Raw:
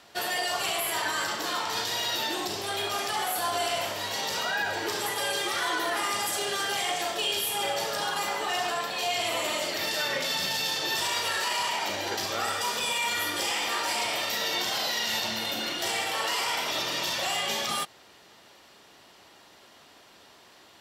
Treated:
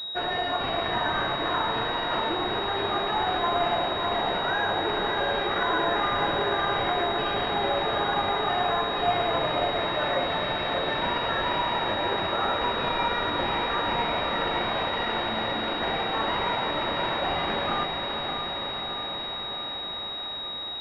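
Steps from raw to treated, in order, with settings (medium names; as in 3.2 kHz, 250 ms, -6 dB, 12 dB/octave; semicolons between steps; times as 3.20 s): echo that smears into a reverb 560 ms, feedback 73%, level -5 dB; class-D stage that switches slowly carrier 3.8 kHz; trim +3.5 dB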